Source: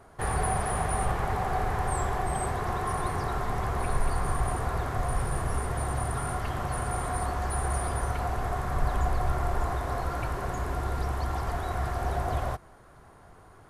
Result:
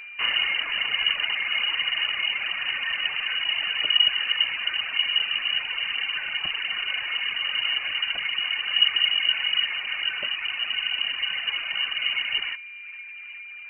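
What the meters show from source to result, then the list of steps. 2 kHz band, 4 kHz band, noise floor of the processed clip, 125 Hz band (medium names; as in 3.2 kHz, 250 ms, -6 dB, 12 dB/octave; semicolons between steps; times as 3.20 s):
+13.5 dB, +28.0 dB, -40 dBFS, under -30 dB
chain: tape echo 410 ms, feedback 81%, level -11.5 dB, low-pass 1.3 kHz; reverb removal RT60 1.5 s; whistle 510 Hz -42 dBFS; frequency inversion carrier 2.9 kHz; trim +4 dB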